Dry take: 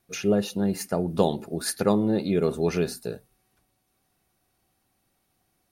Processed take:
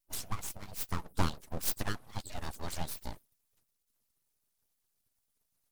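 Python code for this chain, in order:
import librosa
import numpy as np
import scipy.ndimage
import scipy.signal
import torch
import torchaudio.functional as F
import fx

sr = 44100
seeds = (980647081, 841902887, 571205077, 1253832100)

y = fx.hpss_only(x, sr, part='percussive')
y = np.abs(y)
y = fx.bass_treble(y, sr, bass_db=4, treble_db=10)
y = y * 10.0 ** (-7.5 / 20.0)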